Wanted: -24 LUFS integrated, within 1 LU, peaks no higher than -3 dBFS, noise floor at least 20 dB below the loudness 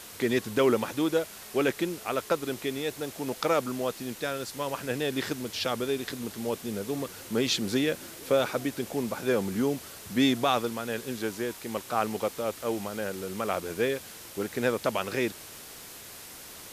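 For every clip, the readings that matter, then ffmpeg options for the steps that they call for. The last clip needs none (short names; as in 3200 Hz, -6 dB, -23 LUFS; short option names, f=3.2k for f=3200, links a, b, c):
noise floor -45 dBFS; noise floor target -50 dBFS; loudness -30.0 LUFS; peak -12.0 dBFS; loudness target -24.0 LUFS
-> -af "afftdn=nr=6:nf=-45"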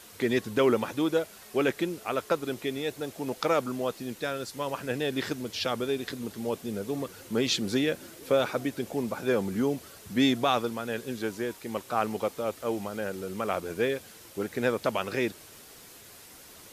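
noise floor -50 dBFS; loudness -30.0 LUFS; peak -12.5 dBFS; loudness target -24.0 LUFS
-> -af "volume=6dB"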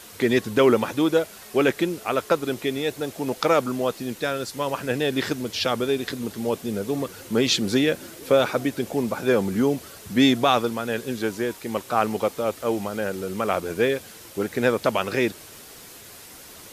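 loudness -24.0 LUFS; peak -6.5 dBFS; noise floor -44 dBFS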